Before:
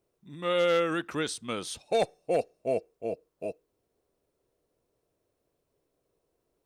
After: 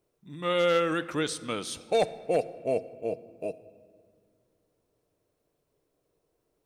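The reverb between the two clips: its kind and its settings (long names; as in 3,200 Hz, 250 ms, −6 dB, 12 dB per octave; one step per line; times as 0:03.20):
rectangular room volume 2,900 cubic metres, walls mixed, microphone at 0.45 metres
level +1 dB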